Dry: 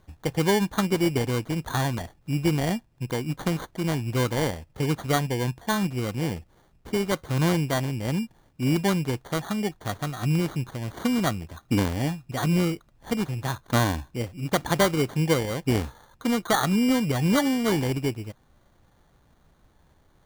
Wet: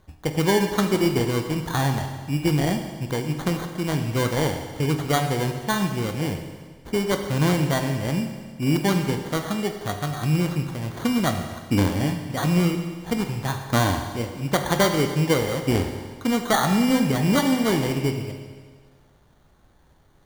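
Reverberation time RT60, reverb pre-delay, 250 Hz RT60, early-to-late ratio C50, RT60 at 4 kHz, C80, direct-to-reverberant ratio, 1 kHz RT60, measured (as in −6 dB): 1.6 s, 20 ms, 1.6 s, 7.0 dB, 1.6 s, 8.0 dB, 5.0 dB, 1.6 s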